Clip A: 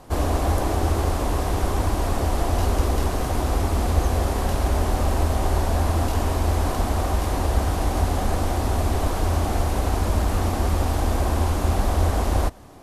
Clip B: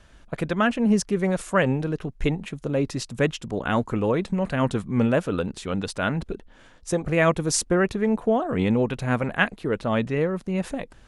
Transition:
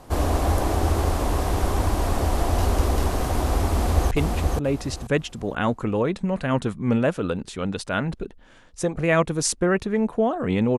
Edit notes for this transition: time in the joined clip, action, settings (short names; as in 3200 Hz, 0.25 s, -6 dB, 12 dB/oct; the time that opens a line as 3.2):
clip A
3.68–4.11 echo throw 0.48 s, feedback 25%, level -3 dB
4.11 switch to clip B from 2.2 s